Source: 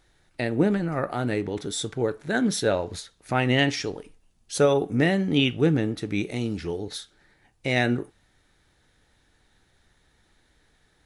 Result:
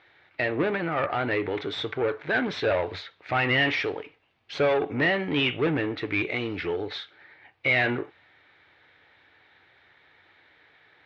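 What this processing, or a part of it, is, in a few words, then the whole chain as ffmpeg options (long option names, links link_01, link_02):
overdrive pedal into a guitar cabinet: -filter_complex "[0:a]asplit=2[link_01][link_02];[link_02]highpass=frequency=720:poles=1,volume=22dB,asoftclip=type=tanh:threshold=-9dB[link_03];[link_01][link_03]amix=inputs=2:normalize=0,lowpass=frequency=3900:poles=1,volume=-6dB,highpass=80,equalizer=frequency=94:width_type=q:width=4:gain=7,equalizer=frequency=210:width_type=q:width=4:gain=-9,equalizer=frequency=2200:width_type=q:width=4:gain=6,lowpass=frequency=3600:width=0.5412,lowpass=frequency=3600:width=1.3066,volume=-6.5dB"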